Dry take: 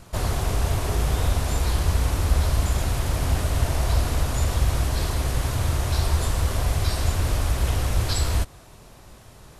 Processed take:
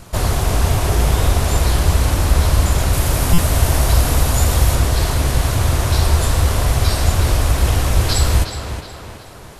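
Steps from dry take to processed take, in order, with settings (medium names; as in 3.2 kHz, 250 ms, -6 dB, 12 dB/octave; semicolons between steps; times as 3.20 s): treble shelf 8.7 kHz +3 dB, from 2.93 s +10.5 dB, from 4.75 s +2.5 dB; tape echo 366 ms, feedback 55%, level -6 dB, low-pass 4.2 kHz; buffer glitch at 3.33 s, samples 256, times 8; trim +7 dB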